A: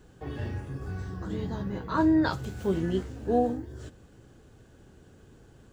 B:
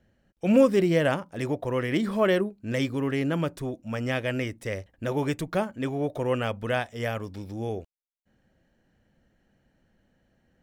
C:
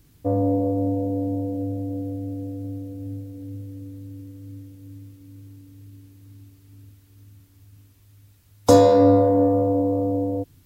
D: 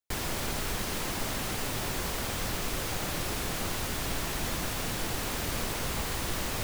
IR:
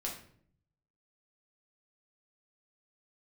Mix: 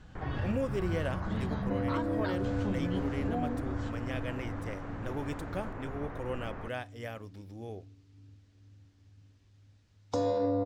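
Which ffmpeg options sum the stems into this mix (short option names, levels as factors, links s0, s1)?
-filter_complex "[0:a]lowpass=4600,equalizer=f=400:w=1.9:g=-14,acompressor=threshold=0.0178:ratio=6,volume=1.33,asplit=2[s0][s1];[s1]volume=0.335[s2];[1:a]volume=0.266,asplit=2[s3][s4];[s4]volume=0.0841[s5];[2:a]lowpass=f=6300:w=0.5412,lowpass=f=6300:w=1.3066,adelay=1450,volume=0.398[s6];[3:a]lowpass=f=1700:w=0.5412,lowpass=f=1700:w=1.3066,adelay=50,volume=0.447[s7];[4:a]atrim=start_sample=2205[s8];[s2][s5]amix=inputs=2:normalize=0[s9];[s9][s8]afir=irnorm=-1:irlink=0[s10];[s0][s3][s6][s7][s10]amix=inputs=5:normalize=0,alimiter=limit=0.0841:level=0:latency=1:release=271"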